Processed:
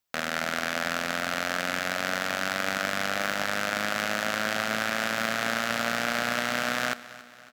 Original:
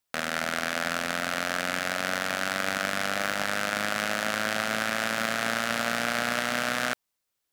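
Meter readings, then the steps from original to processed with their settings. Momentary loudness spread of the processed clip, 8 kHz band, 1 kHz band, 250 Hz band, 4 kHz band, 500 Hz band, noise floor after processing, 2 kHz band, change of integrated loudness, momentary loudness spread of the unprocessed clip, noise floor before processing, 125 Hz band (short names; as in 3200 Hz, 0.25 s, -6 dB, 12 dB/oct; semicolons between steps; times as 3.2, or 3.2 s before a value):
2 LU, -1.0 dB, 0.0 dB, 0.0 dB, 0.0 dB, 0.0 dB, -50 dBFS, 0.0 dB, 0.0 dB, 2 LU, -81 dBFS, 0.0 dB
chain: bell 9400 Hz -8 dB 0.22 oct; on a send: feedback echo 0.277 s, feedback 52%, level -17.5 dB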